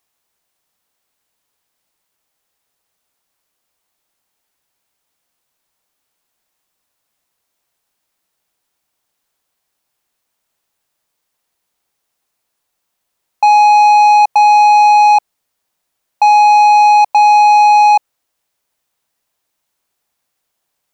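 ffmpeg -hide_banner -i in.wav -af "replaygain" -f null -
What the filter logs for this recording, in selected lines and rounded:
track_gain = -7.7 dB
track_peak = 0.394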